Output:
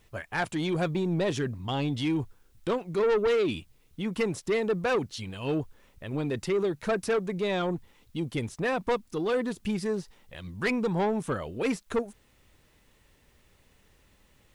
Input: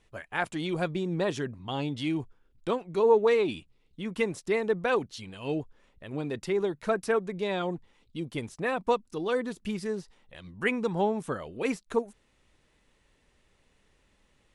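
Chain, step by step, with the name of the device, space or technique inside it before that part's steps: open-reel tape (soft clip -24.5 dBFS, distortion -10 dB; bell 93 Hz +5 dB 1.19 oct; white noise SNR 43 dB); gain +3.5 dB

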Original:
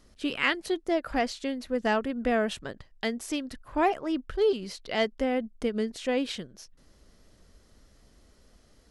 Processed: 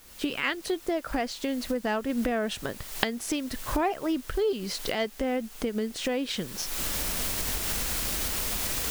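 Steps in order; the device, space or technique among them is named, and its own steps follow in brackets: cheap recorder with automatic gain (white noise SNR 22 dB; recorder AGC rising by 44 dB/s); gain -3 dB

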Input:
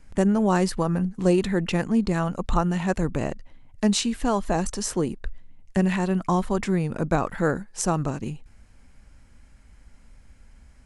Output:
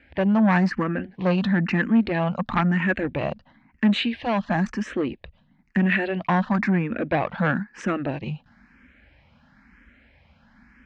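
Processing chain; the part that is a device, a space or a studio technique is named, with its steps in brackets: barber-pole phaser into a guitar amplifier (endless phaser +1 Hz; soft clip -21.5 dBFS, distortion -13 dB; speaker cabinet 96–3800 Hz, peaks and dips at 110 Hz -9 dB, 230 Hz +4 dB, 420 Hz -8 dB, 1700 Hz +7 dB, 2400 Hz +4 dB); 4.06–5.83 bell 1100 Hz -3 dB 1.8 oct; gain +7 dB

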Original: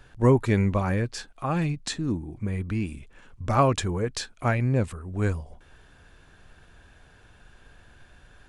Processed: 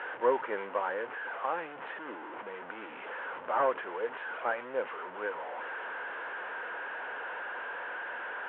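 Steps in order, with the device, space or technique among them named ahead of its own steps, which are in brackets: 0.81–1.51 steep low-pass 2300 Hz 36 dB/oct; digital answering machine (BPF 360–3200 Hz; delta modulation 16 kbps, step -30.5 dBFS; speaker cabinet 440–3100 Hz, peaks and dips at 500 Hz +8 dB, 930 Hz +8 dB, 1500 Hz +7 dB, 2400 Hz -4 dB); gain -6 dB

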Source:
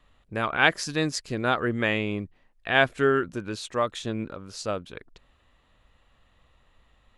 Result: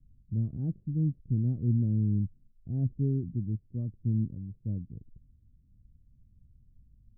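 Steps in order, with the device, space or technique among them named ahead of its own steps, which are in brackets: the neighbour's flat through the wall (LPF 220 Hz 24 dB/oct; bell 110 Hz +6 dB 0.92 oct); gain +3 dB

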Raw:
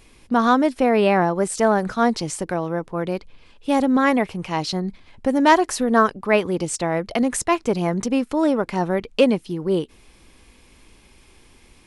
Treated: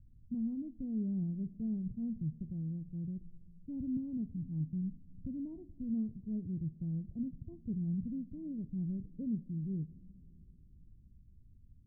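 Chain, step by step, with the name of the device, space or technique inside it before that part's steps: the neighbour's flat through the wall (LPF 180 Hz 24 dB/oct; bell 110 Hz +5 dB 0.92 oct); 3.72–4.22 dynamic EQ 100 Hz, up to +6 dB, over -47 dBFS, Q 0.91; two-slope reverb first 0.34 s, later 3.8 s, from -17 dB, DRR 12.5 dB; gain -6 dB

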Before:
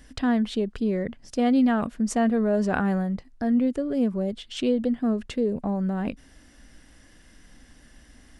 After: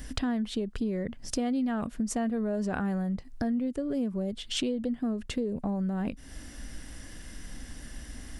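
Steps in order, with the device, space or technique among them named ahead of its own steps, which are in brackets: ASMR close-microphone chain (low shelf 190 Hz +5.5 dB; compressor 4:1, threshold -36 dBFS, peak gain reduction 17 dB; high shelf 6900 Hz +8 dB); gain +5.5 dB

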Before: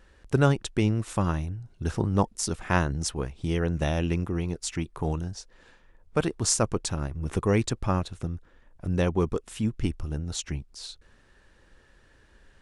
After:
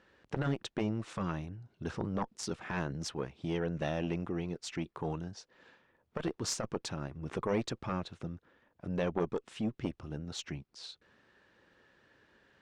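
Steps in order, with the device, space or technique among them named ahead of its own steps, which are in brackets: valve radio (BPF 150–4500 Hz; tube stage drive 12 dB, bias 0.65; core saturation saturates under 890 Hz)

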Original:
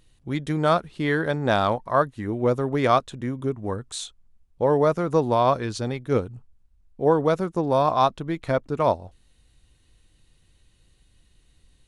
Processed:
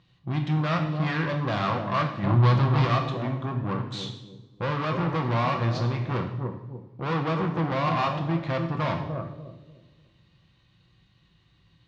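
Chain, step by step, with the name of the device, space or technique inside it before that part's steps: analogue delay pedal into a guitar amplifier (analogue delay 0.296 s, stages 1024, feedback 33%, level -9 dB; tube stage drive 29 dB, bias 0.65; speaker cabinet 89–4600 Hz, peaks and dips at 120 Hz +8 dB, 180 Hz +4 dB, 260 Hz -3 dB, 440 Hz -9 dB, 1100 Hz +6 dB); 2.23–2.85 graphic EQ 125/1000/4000/8000 Hz +9/+5/+8/+6 dB; two-slope reverb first 0.79 s, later 2.5 s, from -26 dB, DRR 3 dB; gain +3.5 dB

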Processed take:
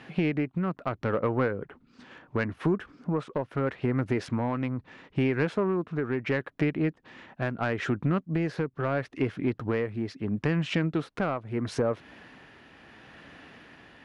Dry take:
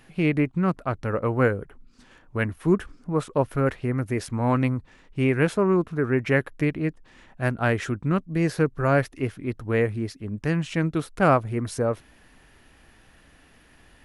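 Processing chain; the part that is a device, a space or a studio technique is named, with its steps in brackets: AM radio (BPF 130–3800 Hz; compressor 6:1, threshold -30 dBFS, peak gain reduction 16 dB; soft clip -22.5 dBFS, distortion -21 dB; tremolo 0.75 Hz, depth 34%); gain +8 dB

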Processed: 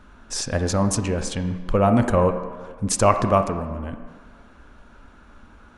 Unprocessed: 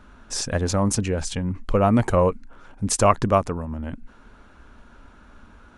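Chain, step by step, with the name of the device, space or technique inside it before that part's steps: filtered reverb send (on a send: HPF 170 Hz 12 dB/oct + LPF 3100 Hz 12 dB/oct + reverb RT60 1.6 s, pre-delay 22 ms, DRR 7.5 dB)

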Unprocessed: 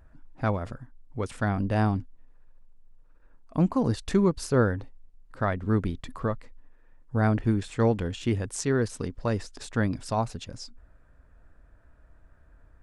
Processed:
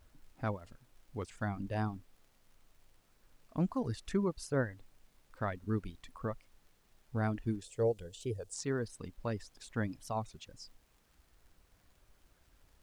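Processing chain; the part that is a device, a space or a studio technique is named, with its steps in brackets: reverb removal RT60 1.5 s; warped LP (record warp 33 1/3 rpm, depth 160 cents; crackle; pink noise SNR 32 dB); 7.61–8.54 graphic EQ 250/500/1000/2000/8000 Hz -10/+10/-9/-9/+5 dB; gain -9 dB

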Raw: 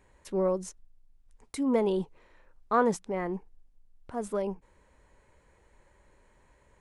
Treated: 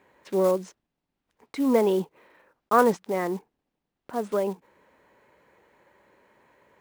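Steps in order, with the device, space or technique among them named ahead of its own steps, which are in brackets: early digital voice recorder (BPF 200–3700 Hz; block floating point 5-bit); gain +5.5 dB

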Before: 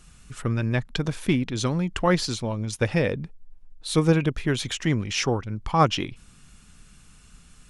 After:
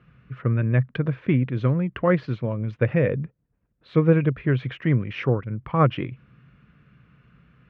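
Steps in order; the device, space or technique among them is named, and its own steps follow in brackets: bass cabinet (speaker cabinet 63–2300 Hz, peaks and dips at 77 Hz -8 dB, 130 Hz +9 dB, 510 Hz +4 dB, 830 Hz -9 dB)

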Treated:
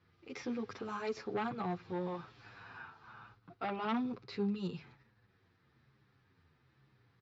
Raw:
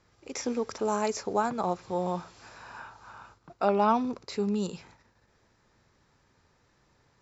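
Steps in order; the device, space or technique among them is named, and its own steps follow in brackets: barber-pole flanger into a guitar amplifier (endless flanger 8.3 ms -1.1 Hz; soft clip -25 dBFS, distortion -11 dB; speaker cabinet 80–4100 Hz, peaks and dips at 83 Hz +4 dB, 130 Hz +8 dB, 590 Hz -10 dB, 920 Hz -6 dB); gain -1 dB

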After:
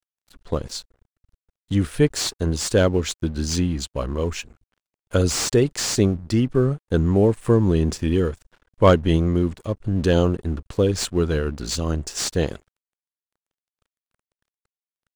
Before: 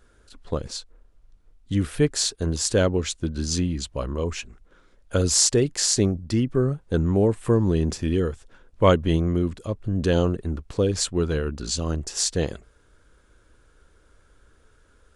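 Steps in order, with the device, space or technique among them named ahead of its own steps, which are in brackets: early transistor amplifier (crossover distortion -47.5 dBFS; slew limiter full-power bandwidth 290 Hz); gain +3 dB

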